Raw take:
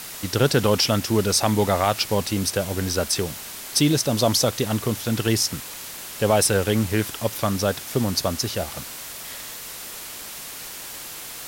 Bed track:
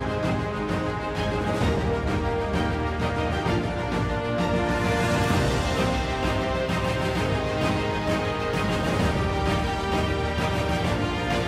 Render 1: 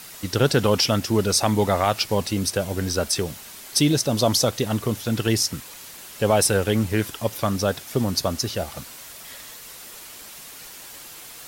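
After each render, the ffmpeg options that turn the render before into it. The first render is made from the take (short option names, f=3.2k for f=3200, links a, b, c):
-af "afftdn=nr=6:nf=-37"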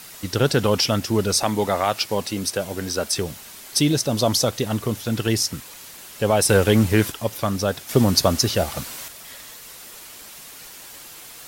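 -filter_complex "[0:a]asettb=1/sr,asplit=3[a][b][c];[a]atrim=end=1.434[d];[b]atrim=start=1.43:end=3.11,asetpts=PTS-STARTPTS,afade=t=in:d=0.004:c=qsin,afade=t=out:st=1.676:d=0.004:c=qsin,highpass=f=190:p=1[e];[c]atrim=start=3.106[f];[d][e]acrossfade=d=0.004:c1=hsin:c2=qsin[g];[g][f]acrossfade=d=0.004:c1=qsin:c2=hsin,asettb=1/sr,asplit=3[h][i][j];[h]atrim=end=6.494[k];[i]atrim=start=6.49:end=7.12,asetpts=PTS-STARTPTS,afade=t=in:d=0.004:c=qsin,afade=t=out:st=0.626:d=0.004:c=qsin,acontrast=34[l];[j]atrim=start=7.116[m];[k][l]acrossfade=d=0.004:c1=hsin:c2=qsin[n];[n][m]acrossfade=d=0.004:c1=qsin:c2=hsin,asplit=3[o][p][q];[o]atrim=end=7.892[r];[p]atrim=start=7.888:end=9.082,asetpts=PTS-STARTPTS,volume=6dB[s];[q]atrim=start=9.078[t];[r][s]acrossfade=d=0.004:c1=hsin:c2=hsin[u];[u][t]acrossfade=d=0.004:c1=hsin:c2=hsin"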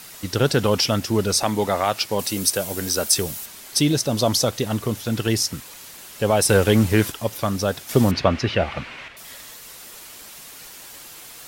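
-filter_complex "[0:a]asettb=1/sr,asplit=3[a][b][c];[a]atrim=end=2.194[d];[b]atrim=start=2.19:end=3.46,asetpts=PTS-STARTPTS,afade=t=in:d=0.004:c=qsin,afade=t=out:st=1.266:d=0.004:c=qsin,highshelf=f=6.9k:g=12[e];[c]atrim=start=3.456[f];[d][e]acrossfade=d=0.004:c1=hsin:c2=qsin[g];[g][f]acrossfade=d=0.004:c1=qsin:c2=hsin,asettb=1/sr,asplit=3[h][i][j];[h]atrim=end=8.114[k];[i]atrim=start=8.11:end=9.17,asetpts=PTS-STARTPTS,afade=t=in:d=0.004:c=qsin,afade=t=out:st=1.056:d=0.004:c=qsin,lowpass=f=2.4k:t=q:w=2.3[l];[j]atrim=start=9.166[m];[k][l]acrossfade=d=0.004:c1=hsin:c2=qsin[n];[n][m]acrossfade=d=0.004:c1=qsin:c2=hsin"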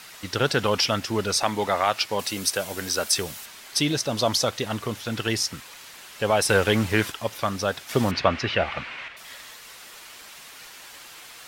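-af "lowpass=f=1.8k:p=1,tiltshelf=f=830:g=-7.5"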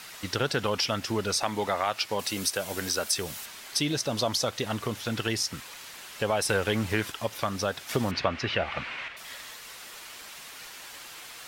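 -af "acompressor=threshold=-27dB:ratio=2"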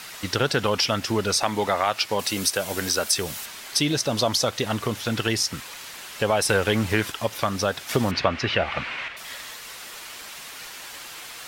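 -af "volume=5dB"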